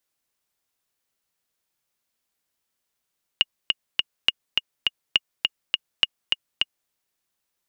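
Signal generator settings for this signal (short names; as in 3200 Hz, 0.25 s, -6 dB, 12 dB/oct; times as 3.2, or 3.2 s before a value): metronome 206 bpm, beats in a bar 3, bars 4, 2860 Hz, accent 3 dB -3.5 dBFS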